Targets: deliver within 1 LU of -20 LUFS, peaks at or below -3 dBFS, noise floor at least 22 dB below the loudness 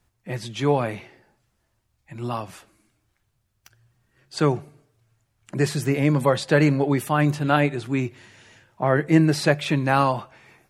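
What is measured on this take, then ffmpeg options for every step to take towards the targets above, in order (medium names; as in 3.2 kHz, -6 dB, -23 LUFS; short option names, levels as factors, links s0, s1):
loudness -22.5 LUFS; peak level -4.0 dBFS; loudness target -20.0 LUFS
-> -af "volume=1.33,alimiter=limit=0.708:level=0:latency=1"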